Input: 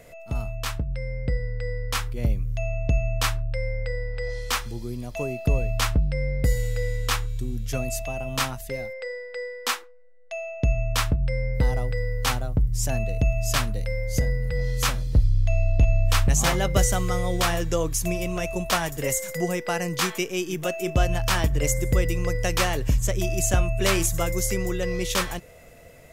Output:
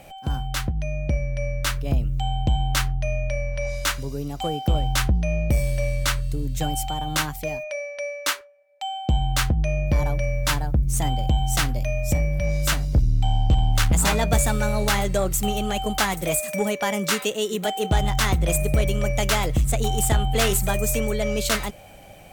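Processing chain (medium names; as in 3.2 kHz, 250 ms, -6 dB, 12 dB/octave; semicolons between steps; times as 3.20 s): tape speed +17%; Chebyshev shaper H 5 -21 dB, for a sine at -9 dBFS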